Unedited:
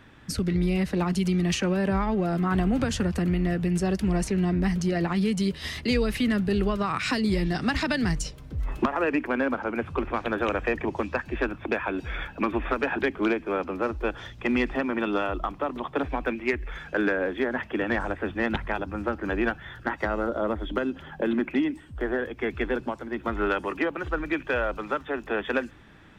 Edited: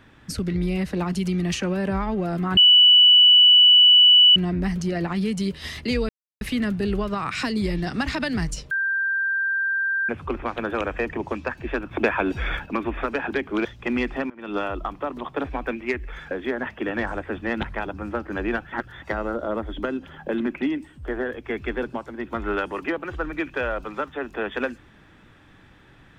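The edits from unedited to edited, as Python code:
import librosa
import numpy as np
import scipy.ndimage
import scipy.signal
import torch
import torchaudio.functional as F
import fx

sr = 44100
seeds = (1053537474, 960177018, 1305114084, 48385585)

y = fx.edit(x, sr, fx.bleep(start_s=2.57, length_s=1.79, hz=2960.0, db=-9.5),
    fx.insert_silence(at_s=6.09, length_s=0.32),
    fx.bleep(start_s=8.39, length_s=1.38, hz=1580.0, db=-20.5),
    fx.clip_gain(start_s=11.59, length_s=0.75, db=6.0),
    fx.cut(start_s=13.33, length_s=0.91),
    fx.fade_in_from(start_s=14.89, length_s=0.26, curve='qua', floor_db=-21.5),
    fx.cut(start_s=16.9, length_s=0.34),
    fx.reverse_span(start_s=19.65, length_s=0.3), tone=tone)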